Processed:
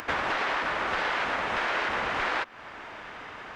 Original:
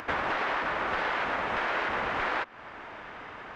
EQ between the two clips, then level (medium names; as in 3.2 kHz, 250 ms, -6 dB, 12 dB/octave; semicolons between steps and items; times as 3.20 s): treble shelf 3.7 kHz +10 dB; 0.0 dB